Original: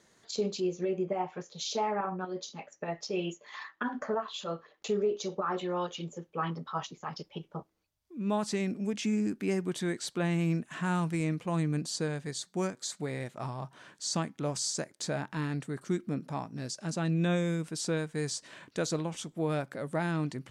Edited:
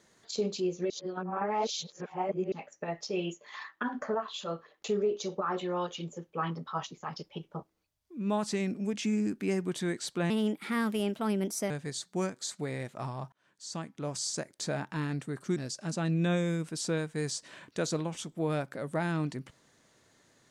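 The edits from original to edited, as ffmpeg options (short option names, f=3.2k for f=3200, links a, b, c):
-filter_complex "[0:a]asplit=7[a][b][c][d][e][f][g];[a]atrim=end=0.902[h];[b]atrim=start=0.898:end=2.522,asetpts=PTS-STARTPTS,areverse[i];[c]atrim=start=2.518:end=10.304[j];[d]atrim=start=10.3:end=12.11,asetpts=PTS-STARTPTS,asetrate=56889,aresample=44100[k];[e]atrim=start=12.106:end=13.73,asetpts=PTS-STARTPTS,afade=t=out:st=1.62:d=0.004:c=hsin[l];[f]atrim=start=13.73:end=15.972,asetpts=PTS-STARTPTS,afade=t=in:d=1.47:c=qsin[m];[g]atrim=start=16.558[n];[h][i]acrossfade=d=0.004:c1=hsin:c2=hsin[o];[o][j]acrossfade=d=0.004:c1=hsin:c2=hsin[p];[p][k]acrossfade=d=0.004:c1=hsin:c2=hsin[q];[l][m]concat=n=2:v=0:a=1[r];[q][r]acrossfade=d=0.004:c1=hsin:c2=hsin[s];[s][n]acrossfade=d=0.004:c1=hsin:c2=hsin"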